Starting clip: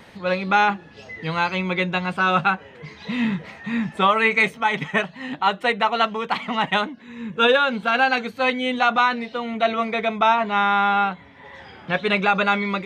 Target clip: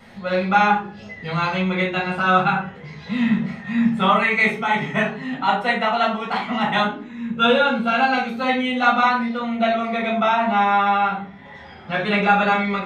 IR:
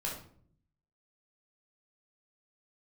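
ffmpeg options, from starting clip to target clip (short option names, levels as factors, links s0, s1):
-filter_complex "[0:a]asettb=1/sr,asplit=3[s0][s1][s2];[s0]atrim=end=7.284[s3];[s1]atrim=start=7.28:end=8.33,asetpts=PTS-STARTPTS,afade=t=in:d=0.004:c=qsin,afade=t=out:st=1.046:d=0.004:c=qsin,bandreject=f=1800:w=6[s4];[s2]atrim=start=8.326[s5];[s3][s4]acrossfade=d=0.004:c1=hsin:c2=qsin[s6];[s6][s5]acrossfade=d=0.004:c1=qsin:c2=hsin[s7];[1:a]atrim=start_sample=2205,asetrate=57330,aresample=44100[s8];[s7][s8]afir=irnorm=-1:irlink=0"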